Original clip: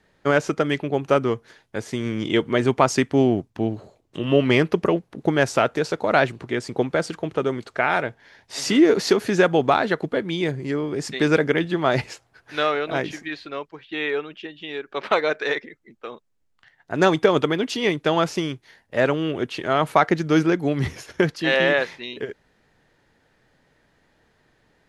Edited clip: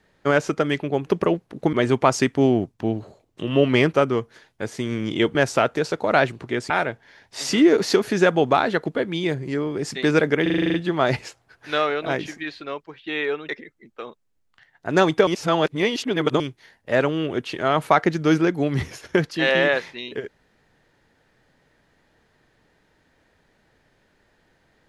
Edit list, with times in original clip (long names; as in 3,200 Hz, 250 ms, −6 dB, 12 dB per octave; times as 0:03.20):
0:01.07–0:02.49: swap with 0:04.69–0:05.35
0:06.70–0:07.87: remove
0:11.59: stutter 0.04 s, 9 plays
0:14.34–0:15.54: remove
0:17.32–0:18.45: reverse